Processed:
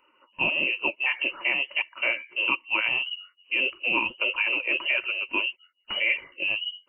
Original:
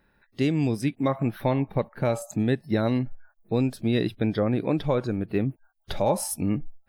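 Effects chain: inverted band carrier 2900 Hz; small resonant body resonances 350/540/940 Hz, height 17 dB, ringing for 30 ms; flange 1.6 Hz, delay 0.1 ms, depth 9.9 ms, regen +33%

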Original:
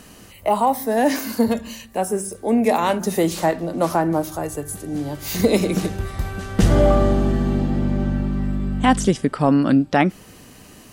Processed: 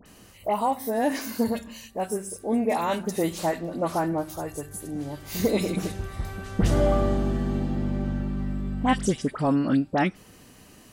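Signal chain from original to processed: dispersion highs, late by 59 ms, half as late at 1800 Hz; gain -6.5 dB

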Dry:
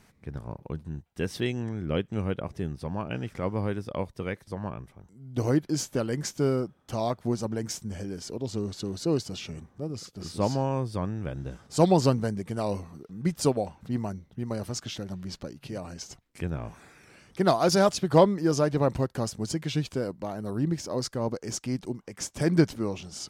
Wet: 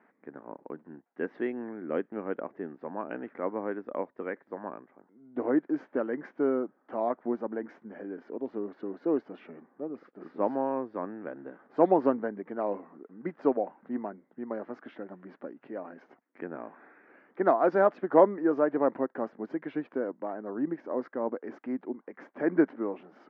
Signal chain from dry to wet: elliptic band-pass 260–1800 Hz, stop band 70 dB

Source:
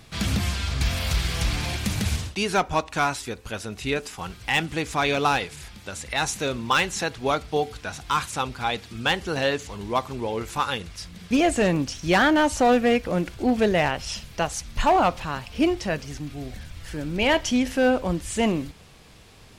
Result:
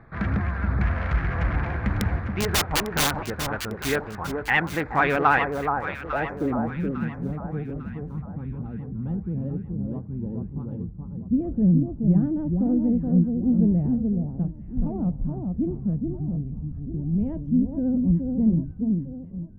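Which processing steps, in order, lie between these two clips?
Wiener smoothing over 15 samples; low-pass sweep 1700 Hz -> 190 Hz, 5.69–6.68; vibrato 13 Hz 57 cents; 1.89–3.11 wrapped overs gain 16 dB; on a send: echo with dull and thin repeats by turns 0.425 s, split 1200 Hz, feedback 59%, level -4 dB

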